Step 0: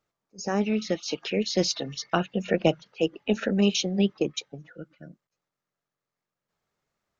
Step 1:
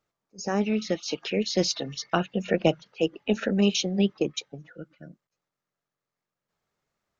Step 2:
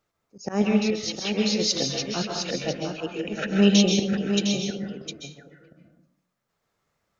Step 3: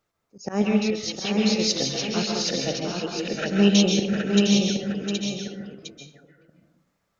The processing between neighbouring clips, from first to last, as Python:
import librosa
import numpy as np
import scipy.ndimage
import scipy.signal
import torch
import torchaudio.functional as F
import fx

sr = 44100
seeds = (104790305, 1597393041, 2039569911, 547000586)

y1 = x
y2 = fx.auto_swell(y1, sr, attack_ms=123.0)
y2 = y2 + 10.0 ** (-7.0 / 20.0) * np.pad(y2, (int(708 * sr / 1000.0), 0))[:len(y2)]
y2 = fx.rev_plate(y2, sr, seeds[0], rt60_s=0.63, hf_ratio=0.6, predelay_ms=120, drr_db=1.0)
y2 = y2 * 10.0 ** (3.5 / 20.0)
y3 = y2 + 10.0 ** (-4.0 / 20.0) * np.pad(y2, (int(772 * sr / 1000.0), 0))[:len(y2)]